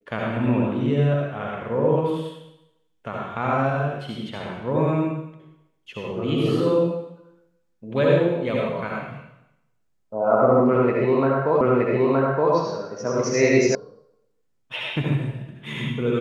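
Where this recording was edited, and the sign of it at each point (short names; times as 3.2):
11.61 repeat of the last 0.92 s
13.75 sound cut off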